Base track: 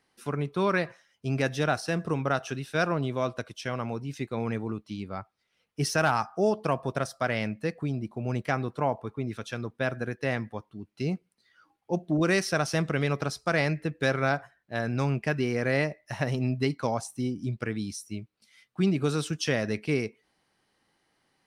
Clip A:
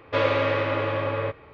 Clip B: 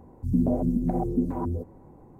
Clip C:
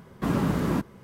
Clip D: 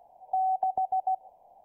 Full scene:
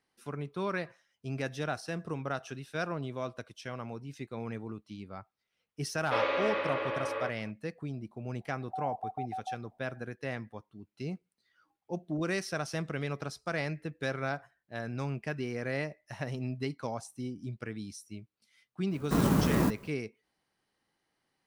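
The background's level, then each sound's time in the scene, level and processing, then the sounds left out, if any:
base track -8 dB
5.98 add A -6.5 dB + HPF 350 Hz
8.4 add D -10.5 dB
18.89 add C -1 dB, fades 0.05 s + clock jitter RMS 0.052 ms
not used: B

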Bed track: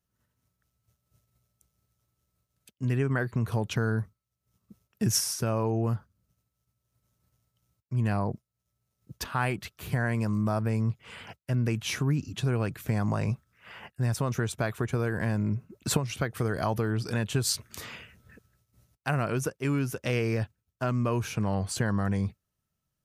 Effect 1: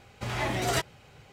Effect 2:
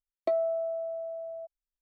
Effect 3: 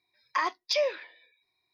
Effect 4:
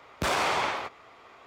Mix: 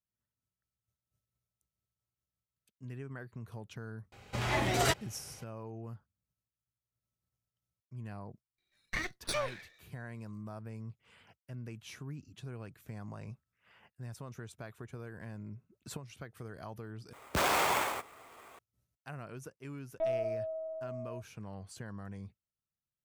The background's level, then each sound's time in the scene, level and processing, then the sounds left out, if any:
bed track -17 dB
4.12 add 1 -1 dB
8.58 add 3 -5 dB + minimum comb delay 0.5 ms
17.13 replace with 4 -2.5 dB + sample-rate reducer 10000 Hz
19.74 add 2 -5 dB + LPC vocoder at 8 kHz pitch kept

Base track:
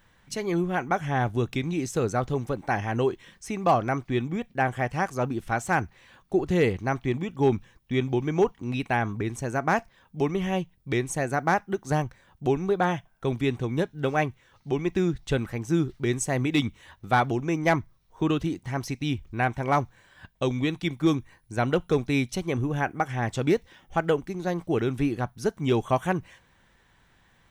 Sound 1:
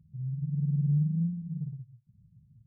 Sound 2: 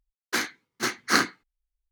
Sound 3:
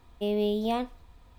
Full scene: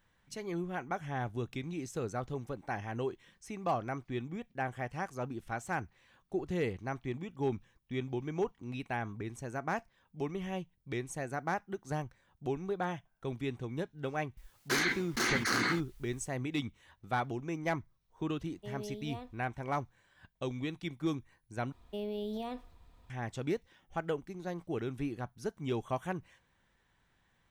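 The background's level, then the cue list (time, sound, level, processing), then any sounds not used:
base track -11 dB
14.37 add 2 -13 dB + fast leveller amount 100%
18.42 add 3 -16.5 dB
21.72 replace with 3 -6 dB + limiter -24.5 dBFS
not used: 1

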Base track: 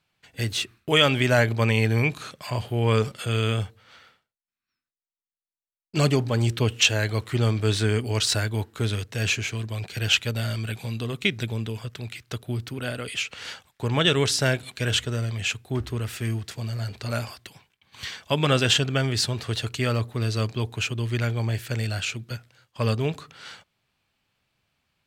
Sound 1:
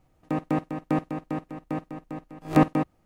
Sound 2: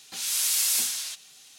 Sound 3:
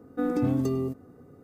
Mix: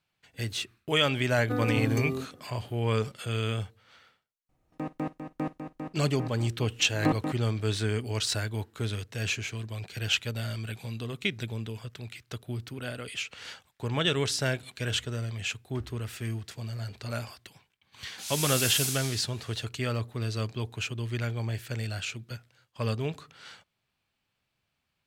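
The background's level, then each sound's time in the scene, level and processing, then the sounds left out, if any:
base track -6 dB
1.32 add 3 -0.5 dB + tilt shelf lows -5 dB, about 900 Hz
4.49 add 1 -7.5 dB
18.06 add 2 -5.5 dB

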